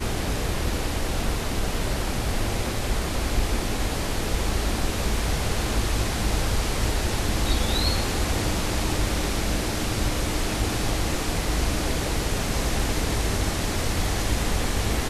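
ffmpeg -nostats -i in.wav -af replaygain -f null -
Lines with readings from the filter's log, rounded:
track_gain = +11.4 dB
track_peak = 0.232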